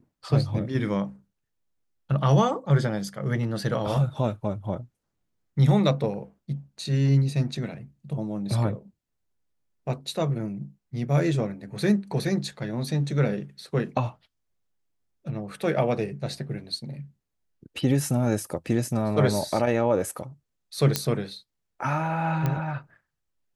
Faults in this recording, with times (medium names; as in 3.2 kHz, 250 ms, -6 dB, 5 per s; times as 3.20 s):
20.96 s: pop -5 dBFS
22.46 s: pop -14 dBFS